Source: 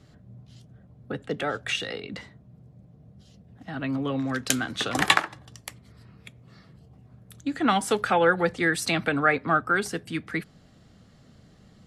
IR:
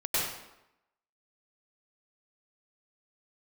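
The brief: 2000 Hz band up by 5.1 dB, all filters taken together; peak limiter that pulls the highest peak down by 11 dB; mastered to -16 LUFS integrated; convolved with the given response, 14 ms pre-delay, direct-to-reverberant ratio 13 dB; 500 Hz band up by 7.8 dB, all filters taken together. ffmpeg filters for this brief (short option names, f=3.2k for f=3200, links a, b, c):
-filter_complex "[0:a]equalizer=f=500:t=o:g=8.5,equalizer=f=2k:t=o:g=6,alimiter=limit=-9.5dB:level=0:latency=1,asplit=2[a][b];[1:a]atrim=start_sample=2205,adelay=14[c];[b][c]afir=irnorm=-1:irlink=0,volume=-22.5dB[d];[a][d]amix=inputs=2:normalize=0,volume=7dB"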